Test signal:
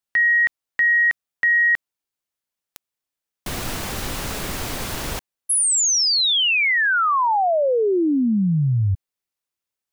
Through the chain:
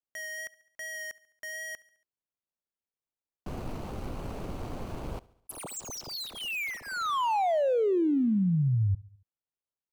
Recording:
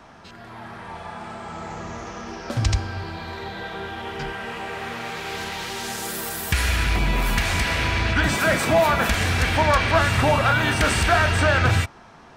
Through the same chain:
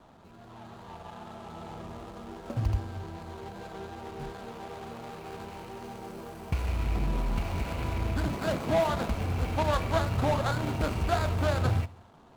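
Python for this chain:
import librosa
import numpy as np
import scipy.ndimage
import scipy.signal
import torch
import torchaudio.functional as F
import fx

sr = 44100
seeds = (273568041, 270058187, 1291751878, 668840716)

y = scipy.ndimage.median_filter(x, 25, mode='constant')
y = fx.vibrato(y, sr, rate_hz=2.6, depth_cents=15.0)
y = fx.echo_feedback(y, sr, ms=70, feedback_pct=57, wet_db=-22.5)
y = y * librosa.db_to_amplitude(-6.5)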